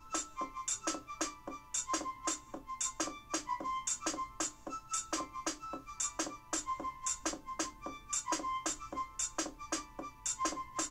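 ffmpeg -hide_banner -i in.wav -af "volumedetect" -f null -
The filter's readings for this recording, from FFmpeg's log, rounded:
mean_volume: -39.7 dB
max_volume: -20.7 dB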